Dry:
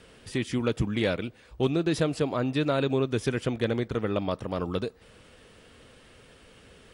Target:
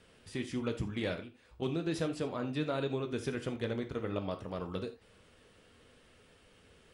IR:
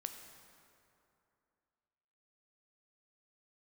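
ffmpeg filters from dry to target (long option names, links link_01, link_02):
-filter_complex "[0:a]asettb=1/sr,asplit=3[link_01][link_02][link_03];[link_01]atrim=end=1.194[link_04];[link_02]atrim=start=1.19:end=1.62,asetpts=PTS-STARTPTS,afade=type=in:duration=0.004:curve=qsin,afade=type=out:start_time=0.426:duration=0.004:curve=qsin,acompressor=threshold=-38dB:ratio=3[link_05];[link_03]atrim=start=1.616[link_06];[link_04][link_05]acrossfade=duration=0.004:curve1=hsin:curve2=qsin[link_07];[link_07][link_06]acrossfade=duration=0.004:curve1=qsin:curve2=hsin,flanger=delay=9.5:depth=3.5:regen=-68:speed=1.4:shape=sinusoidal[link_08];[1:a]atrim=start_sample=2205,atrim=end_sample=4410,asetrate=48510,aresample=44100[link_09];[link_08][link_09]afir=irnorm=-1:irlink=0"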